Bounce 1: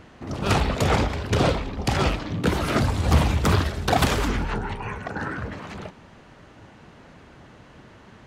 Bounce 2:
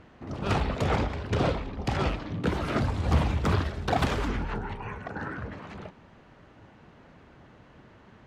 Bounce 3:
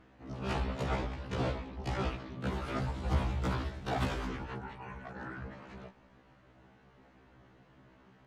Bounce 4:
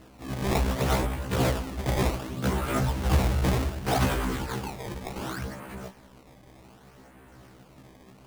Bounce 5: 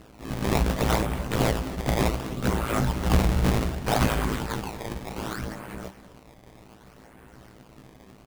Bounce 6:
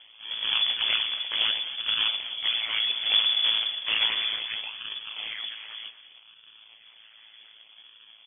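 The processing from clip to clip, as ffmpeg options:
-af "aemphasis=mode=reproduction:type=50kf,volume=0.562"
-af "afftfilt=real='re*1.73*eq(mod(b,3),0)':imag='im*1.73*eq(mod(b,3),0)':win_size=2048:overlap=0.75,volume=0.562"
-af "acrusher=samples=18:mix=1:aa=0.000001:lfo=1:lforange=28.8:lforate=0.66,asoftclip=type=tanh:threshold=0.0891,volume=2.82"
-filter_complex "[0:a]tremolo=f=110:d=0.919,asplit=2[s0][s1];[s1]adelay=250.7,volume=0.158,highshelf=f=4000:g=-5.64[s2];[s0][s2]amix=inputs=2:normalize=0,volume=1.88"
-af "lowpass=f=3000:t=q:w=0.5098,lowpass=f=3000:t=q:w=0.6013,lowpass=f=3000:t=q:w=0.9,lowpass=f=3000:t=q:w=2.563,afreqshift=-3500,volume=0.75"

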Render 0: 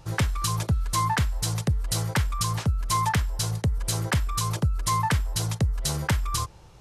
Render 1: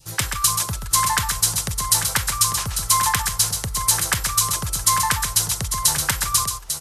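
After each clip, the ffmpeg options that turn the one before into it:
-af "aecho=1:1:131|847:0.447|0.398,crystalizer=i=7.5:c=0,adynamicequalizer=threshold=0.0158:dfrequency=1200:dqfactor=0.98:tfrequency=1200:tqfactor=0.98:attack=5:release=100:ratio=0.375:range=3.5:mode=boostabove:tftype=bell,volume=0.501"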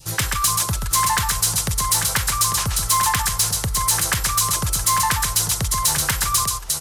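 -filter_complex "[0:a]asplit=2[s0][s1];[s1]acompressor=threshold=0.0562:ratio=6,volume=1.12[s2];[s0][s2]amix=inputs=2:normalize=0,asoftclip=type=tanh:threshold=0.266"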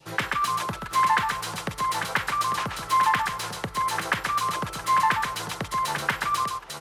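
-filter_complex "[0:a]acrossover=split=170 3100:gain=0.0708 1 0.0891[s0][s1][s2];[s0][s1][s2]amix=inputs=3:normalize=0"

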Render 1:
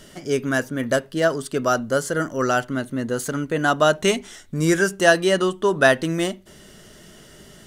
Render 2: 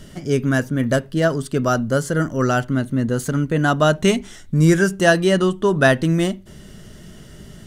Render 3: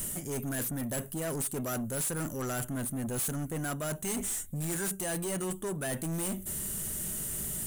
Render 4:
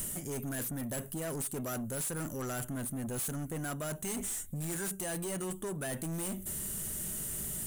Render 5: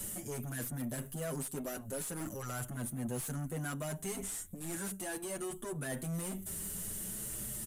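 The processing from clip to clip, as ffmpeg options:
-af "bass=f=250:g=11,treble=f=4000:g=-1"
-af "areverse,acompressor=threshold=0.0562:ratio=10,areverse,aexciter=amount=15.9:drive=6.7:freq=7400,asoftclip=type=tanh:threshold=0.0299"
-af "acompressor=threshold=0.0158:ratio=3"
-filter_complex "[0:a]acrossover=split=120|2600[s0][s1][s2];[s2]asoftclip=type=hard:threshold=0.0168[s3];[s0][s1][s3]amix=inputs=3:normalize=0,aresample=32000,aresample=44100,asplit=2[s4][s5];[s5]adelay=6.8,afreqshift=0.42[s6];[s4][s6]amix=inputs=2:normalize=1,volume=1.12"

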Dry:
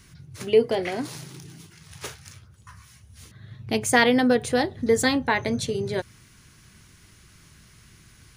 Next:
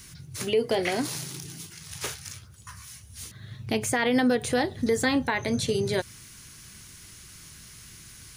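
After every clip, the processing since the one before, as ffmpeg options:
-filter_complex "[0:a]acrossover=split=2900[s0][s1];[s1]acompressor=threshold=0.0112:ratio=4:attack=1:release=60[s2];[s0][s2]amix=inputs=2:normalize=0,highshelf=f=3600:g=11,alimiter=limit=0.168:level=0:latency=1:release=132,volume=1.12"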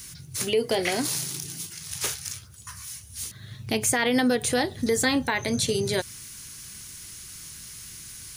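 -af "highshelf=f=4000:g=8.5"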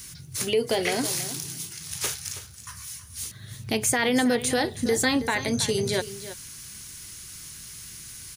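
-af "aecho=1:1:323:0.211"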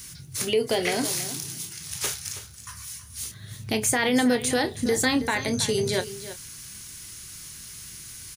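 -filter_complex "[0:a]asplit=2[s0][s1];[s1]adelay=28,volume=0.251[s2];[s0][s2]amix=inputs=2:normalize=0"

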